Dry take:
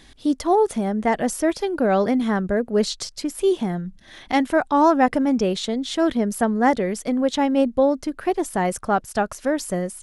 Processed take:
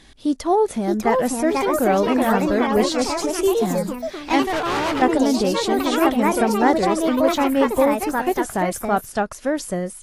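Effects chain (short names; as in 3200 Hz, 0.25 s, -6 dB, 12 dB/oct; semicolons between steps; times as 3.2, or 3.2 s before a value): echoes that change speed 0.662 s, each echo +3 st, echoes 3; 4.42–5.02 hard clip -21 dBFS, distortion -12 dB; AAC 48 kbps 32000 Hz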